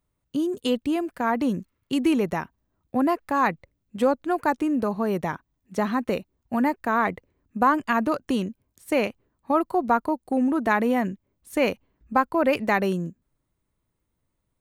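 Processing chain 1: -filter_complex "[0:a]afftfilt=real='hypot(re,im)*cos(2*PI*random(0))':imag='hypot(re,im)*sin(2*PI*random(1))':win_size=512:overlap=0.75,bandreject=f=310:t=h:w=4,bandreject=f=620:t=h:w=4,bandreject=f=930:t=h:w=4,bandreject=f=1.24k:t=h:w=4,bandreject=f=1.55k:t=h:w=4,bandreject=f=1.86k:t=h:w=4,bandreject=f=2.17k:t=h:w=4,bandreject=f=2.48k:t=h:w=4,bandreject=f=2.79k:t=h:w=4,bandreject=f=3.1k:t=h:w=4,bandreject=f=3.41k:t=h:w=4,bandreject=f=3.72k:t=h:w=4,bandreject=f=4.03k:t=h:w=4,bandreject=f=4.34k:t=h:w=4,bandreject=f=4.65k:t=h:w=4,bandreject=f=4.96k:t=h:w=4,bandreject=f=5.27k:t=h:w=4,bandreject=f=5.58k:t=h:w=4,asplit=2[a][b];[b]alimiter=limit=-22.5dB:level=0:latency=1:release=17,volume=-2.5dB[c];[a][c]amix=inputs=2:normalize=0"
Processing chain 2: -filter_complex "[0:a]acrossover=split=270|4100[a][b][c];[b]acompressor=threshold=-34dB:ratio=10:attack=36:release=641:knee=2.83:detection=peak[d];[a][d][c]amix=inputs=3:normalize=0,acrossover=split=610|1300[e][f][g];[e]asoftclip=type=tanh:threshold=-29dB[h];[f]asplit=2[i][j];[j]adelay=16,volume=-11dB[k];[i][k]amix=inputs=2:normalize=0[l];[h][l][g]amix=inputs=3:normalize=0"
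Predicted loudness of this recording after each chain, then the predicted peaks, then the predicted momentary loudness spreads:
-27.5, -34.5 LUFS; -10.5, -16.5 dBFS; 10, 8 LU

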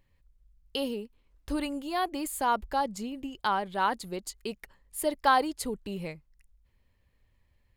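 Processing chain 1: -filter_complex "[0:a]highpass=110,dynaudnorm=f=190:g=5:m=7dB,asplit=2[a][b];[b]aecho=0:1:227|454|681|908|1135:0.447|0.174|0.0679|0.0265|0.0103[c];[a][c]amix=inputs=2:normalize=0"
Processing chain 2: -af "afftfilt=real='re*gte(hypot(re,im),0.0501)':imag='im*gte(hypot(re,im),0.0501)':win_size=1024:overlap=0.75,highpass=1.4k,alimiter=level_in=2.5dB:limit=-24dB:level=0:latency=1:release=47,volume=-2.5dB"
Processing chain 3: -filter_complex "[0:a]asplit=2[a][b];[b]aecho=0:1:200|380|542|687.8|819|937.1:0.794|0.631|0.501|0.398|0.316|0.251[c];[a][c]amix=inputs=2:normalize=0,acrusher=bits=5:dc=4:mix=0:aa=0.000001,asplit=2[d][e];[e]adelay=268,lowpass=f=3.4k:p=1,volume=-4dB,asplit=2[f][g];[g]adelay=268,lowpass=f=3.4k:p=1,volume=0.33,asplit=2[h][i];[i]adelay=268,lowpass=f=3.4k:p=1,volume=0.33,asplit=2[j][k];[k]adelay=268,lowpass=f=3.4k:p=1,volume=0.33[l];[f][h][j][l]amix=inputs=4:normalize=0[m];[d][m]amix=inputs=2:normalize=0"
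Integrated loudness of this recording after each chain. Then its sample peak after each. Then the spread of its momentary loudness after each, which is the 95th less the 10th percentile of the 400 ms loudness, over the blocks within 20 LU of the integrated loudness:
-23.5, -41.5, -25.5 LUFS; -3.0, -26.5, -9.0 dBFS; 14, 16, 13 LU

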